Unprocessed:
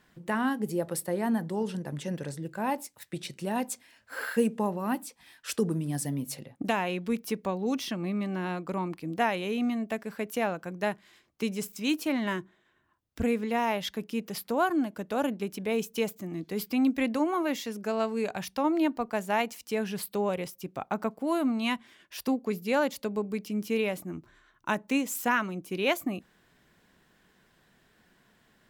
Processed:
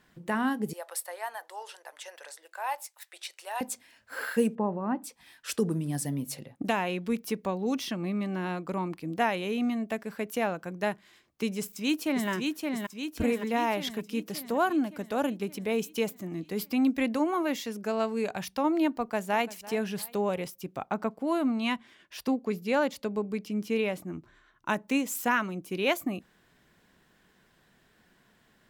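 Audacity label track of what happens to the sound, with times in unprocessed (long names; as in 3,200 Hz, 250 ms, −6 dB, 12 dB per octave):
0.730000	3.610000	inverse Chebyshev high-pass filter stop band from 200 Hz, stop band 60 dB
4.550000	5.040000	low-pass filter 1,400 Hz
11.590000	12.290000	delay throw 570 ms, feedback 60%, level −3.5 dB
18.950000	19.470000	delay throw 340 ms, feedback 40%, level −18 dB
20.850000	24.700000	high-shelf EQ 9,300 Hz −9 dB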